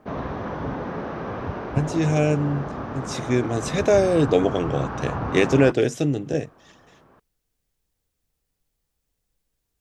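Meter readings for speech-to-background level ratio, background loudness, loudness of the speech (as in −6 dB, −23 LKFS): 8.5 dB, −31.0 LKFS, −22.5 LKFS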